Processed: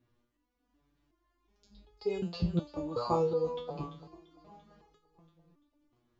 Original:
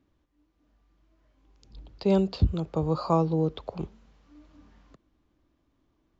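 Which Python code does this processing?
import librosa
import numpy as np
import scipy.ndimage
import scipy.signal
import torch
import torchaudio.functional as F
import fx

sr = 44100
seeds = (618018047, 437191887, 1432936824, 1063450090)

y = fx.echo_feedback(x, sr, ms=341, feedback_pct=60, wet_db=-15.5)
y = fx.resonator_held(y, sr, hz=2.7, low_hz=120.0, high_hz=420.0)
y = F.gain(torch.from_numpy(y), 8.0).numpy()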